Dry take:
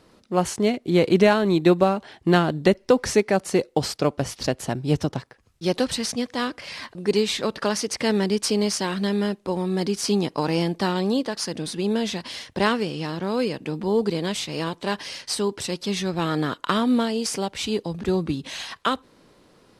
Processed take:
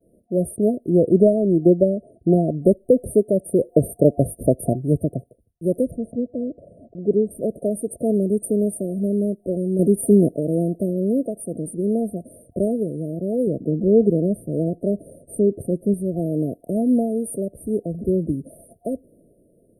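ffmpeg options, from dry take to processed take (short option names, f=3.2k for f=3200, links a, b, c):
-filter_complex "[0:a]asettb=1/sr,asplit=3[a][b][c];[a]atrim=end=0.894[d];[b]atrim=start=0.89:end=2.62,asetpts=PTS-STARTPTS,afade=t=in:d=0.004:c=qsin,afade=t=out:st=1.726:d=0.004:c=qsin,lowpass=8.3k[e];[c]atrim=start=2.616[f];[d][e]acrossfade=d=0.004:c1=hsin:c2=qsin[g];[g][f]acrossfade=d=0.004:c1=qsin:c2=hsin,asettb=1/sr,asplit=3[h][i][j];[h]atrim=end=5.914[k];[i]atrim=start=5.91:end=7.31,asetpts=PTS-STARTPTS,afade=t=in:d=0.004:c=qsin,afade=t=out:st=1.396:d=0.004:c=qsin,lowpass=2.8k[l];[j]atrim=start=7.306[m];[k][l]acrossfade=d=0.004:c1=hsin:c2=qsin[n];[n][m]acrossfade=d=0.004:c1=qsin:c2=hsin,asettb=1/sr,asplit=3[o][p][q];[o]atrim=end=9.794[r];[p]atrim=start=9.79:end=10.36,asetpts=PTS-STARTPTS,afade=t=in:d=0.004:c=qsin,afade=t=out:st=0.566:d=0.004:c=qsin,acontrast=60[s];[q]atrim=start=10.356[t];[r][s]acrossfade=d=0.004:c1=hsin:c2=qsin[u];[u][t]acrossfade=d=0.004:c1=qsin:c2=hsin,asettb=1/sr,asplit=3[v][w][x];[v]atrim=end=13.474[y];[w]atrim=start=13.47:end=15.94,asetpts=PTS-STARTPTS,afade=t=in:d=0.004:c=qsin,afade=t=out:st=2.466:d=0.004:c=qsin,tiltshelf=f=1.1k:g=5.5[z];[x]atrim=start=15.936[aa];[y][z]acrossfade=d=0.004:c1=hsin:c2=qsin[ab];[ab][aa]acrossfade=d=0.004:c1=qsin:c2=hsin,asplit=3[ac][ad][ae];[ac]atrim=end=3.602[af];[ad]atrim=start=3.598:end=4.732,asetpts=PTS-STARTPTS,volume=5dB[ag];[ae]atrim=start=4.728[ah];[af][ag]acrossfade=d=0.004:c1=hsin:c2=hsin[ai];[ai][ah]acrossfade=d=0.004:c1=hsin:c2=hsin,agate=range=-33dB:threshold=-51dB:ratio=3:detection=peak,afftfilt=real='re*(1-between(b*sr/4096,710,8600))':imag='im*(1-between(b*sr/4096,710,8600))':win_size=4096:overlap=0.75,volume=2.5dB"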